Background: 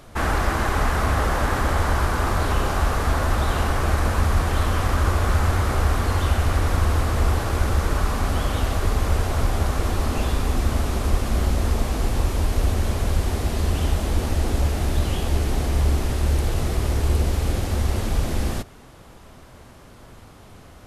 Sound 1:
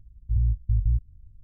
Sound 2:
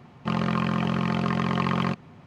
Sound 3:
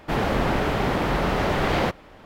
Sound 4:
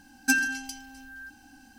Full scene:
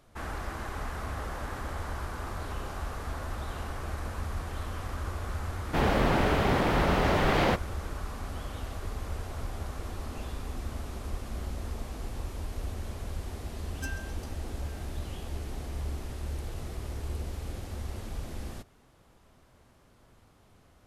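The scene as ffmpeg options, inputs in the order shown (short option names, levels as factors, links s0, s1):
-filter_complex "[0:a]volume=0.178[s0];[3:a]atrim=end=2.25,asetpts=PTS-STARTPTS,volume=0.75,afade=t=in:d=0.004:c=hsin,afade=t=out:st=2.246:d=0.004:c=hsin,adelay=249165S[s1];[4:a]atrim=end=1.78,asetpts=PTS-STARTPTS,volume=0.141,afade=t=in:d=0.004:c=hsin,afade=t=out:st=1.776:d=0.004:c=hsin,adelay=13540[s2];[s0][s1][s2]amix=inputs=3:normalize=0"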